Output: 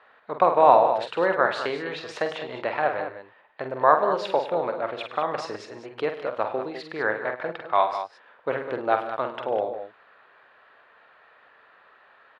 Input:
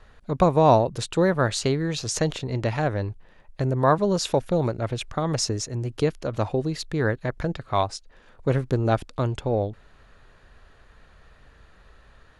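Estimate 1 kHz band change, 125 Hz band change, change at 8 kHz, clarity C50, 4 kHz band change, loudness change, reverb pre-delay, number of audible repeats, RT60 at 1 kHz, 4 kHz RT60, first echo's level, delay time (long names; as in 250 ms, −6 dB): +4.5 dB, −21.0 dB, below −20 dB, no reverb audible, −6.0 dB, −0.5 dB, no reverb audible, 4, no reverb audible, no reverb audible, −7.5 dB, 47 ms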